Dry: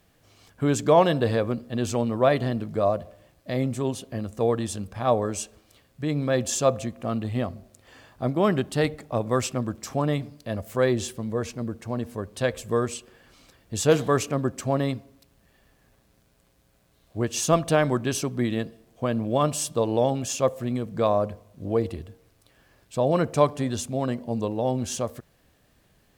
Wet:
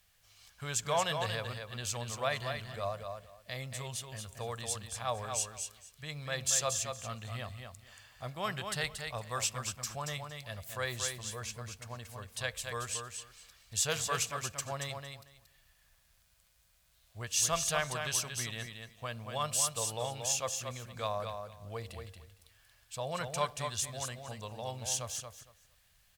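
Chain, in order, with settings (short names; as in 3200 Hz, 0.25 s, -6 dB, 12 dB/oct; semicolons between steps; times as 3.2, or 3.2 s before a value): passive tone stack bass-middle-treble 10-0-10; feedback echo 0.23 s, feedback 18%, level -6 dB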